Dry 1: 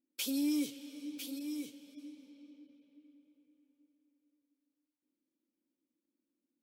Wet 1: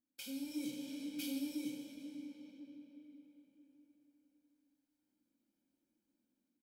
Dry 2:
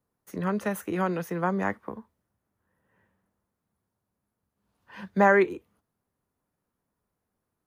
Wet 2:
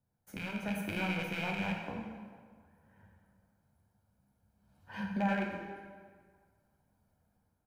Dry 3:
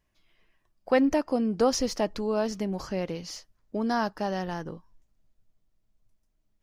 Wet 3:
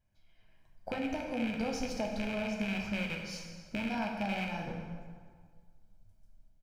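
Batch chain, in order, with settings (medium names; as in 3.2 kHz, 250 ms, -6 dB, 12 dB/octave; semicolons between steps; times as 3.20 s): rattle on loud lows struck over -33 dBFS, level -14 dBFS; compression 3:1, threshold -41 dBFS; comb 1.3 ms, depth 57%; level rider gain up to 8 dB; bass shelf 470 Hz +7 dB; flange 1 Hz, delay 8.7 ms, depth 10 ms, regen -55%; plate-style reverb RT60 1.8 s, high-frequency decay 0.7×, pre-delay 0 ms, DRR 0.5 dB; trim -5.5 dB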